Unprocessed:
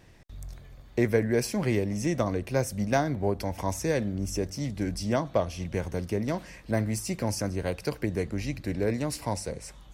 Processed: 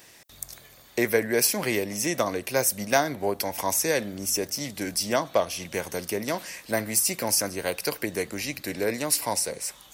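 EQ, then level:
dynamic equaliser 7,200 Hz, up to −5 dB, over −52 dBFS, Q 0.86
RIAA equalisation recording
low-shelf EQ 95 Hz −6.5 dB
+5.0 dB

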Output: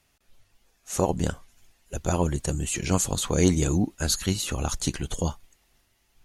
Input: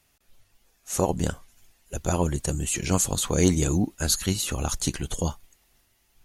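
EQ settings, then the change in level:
high-shelf EQ 11,000 Hz −8.5 dB
0.0 dB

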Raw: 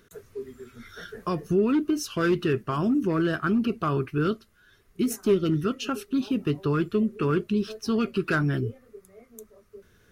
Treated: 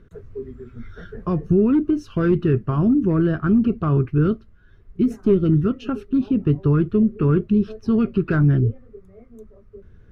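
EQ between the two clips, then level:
RIAA equalisation playback
high-shelf EQ 4,000 Hz −8 dB
0.0 dB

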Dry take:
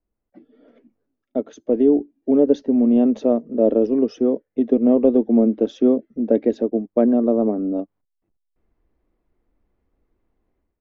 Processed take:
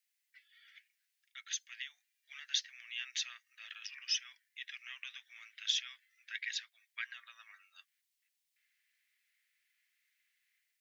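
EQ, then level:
Butterworth high-pass 1,800 Hz 48 dB per octave
+12.0 dB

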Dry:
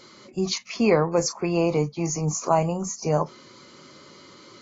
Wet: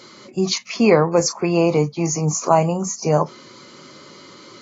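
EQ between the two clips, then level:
high-pass filter 89 Hz
+5.5 dB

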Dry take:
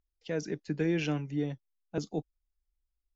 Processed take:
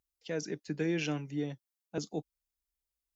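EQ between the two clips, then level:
high-pass filter 120 Hz 6 dB per octave
high-shelf EQ 5,100 Hz +8.5 dB
−2.0 dB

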